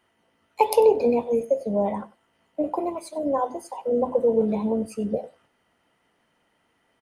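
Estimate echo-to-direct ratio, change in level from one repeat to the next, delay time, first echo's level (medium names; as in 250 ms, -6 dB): -20.0 dB, no regular repeats, 96 ms, -20.0 dB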